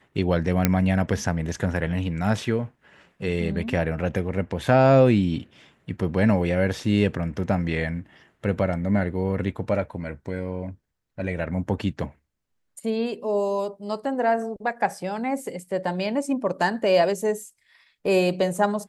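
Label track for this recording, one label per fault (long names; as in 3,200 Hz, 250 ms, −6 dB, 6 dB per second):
0.650000	0.650000	click −4 dBFS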